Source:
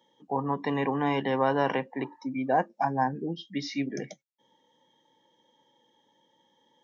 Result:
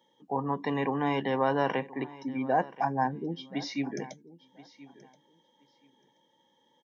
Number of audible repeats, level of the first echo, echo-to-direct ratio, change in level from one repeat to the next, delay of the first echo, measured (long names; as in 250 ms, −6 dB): 2, −19.0 dB, −19.0 dB, −15.0 dB, 1,028 ms